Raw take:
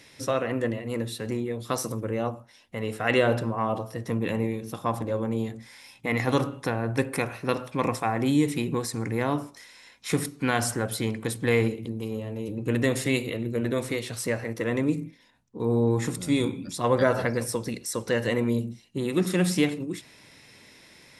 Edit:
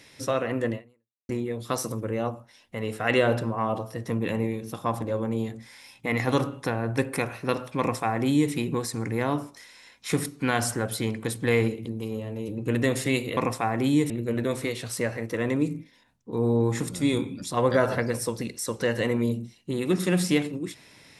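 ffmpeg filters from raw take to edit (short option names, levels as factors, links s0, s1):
-filter_complex "[0:a]asplit=4[s0][s1][s2][s3];[s0]atrim=end=1.29,asetpts=PTS-STARTPTS,afade=t=out:st=0.75:d=0.54:c=exp[s4];[s1]atrim=start=1.29:end=13.372,asetpts=PTS-STARTPTS,afade=t=in:d=0.004:c=hsin[s5];[s2]atrim=start=7.788:end=8.522[s6];[s3]atrim=start=13.368[s7];[s4][s5]concat=n=2:v=0:a=1[s8];[s8][s6]acrossfade=d=0.004:c1=hsin:c2=hsin[s9];[s9][s7]acrossfade=d=0.004:c1=hsin:c2=hsin"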